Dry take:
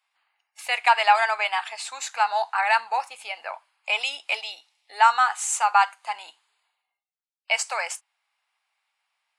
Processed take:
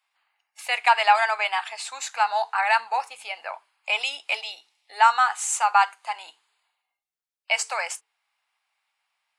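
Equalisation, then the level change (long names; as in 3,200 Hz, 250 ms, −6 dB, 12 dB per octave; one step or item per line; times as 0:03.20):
mains-hum notches 50/100/150/200/250/300/350/400/450 Hz
0.0 dB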